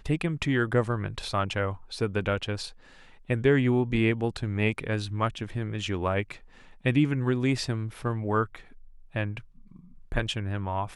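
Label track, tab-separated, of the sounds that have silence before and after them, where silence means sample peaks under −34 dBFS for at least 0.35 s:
3.300000	6.320000	sound
6.850000	8.560000	sound
9.150000	9.390000	sound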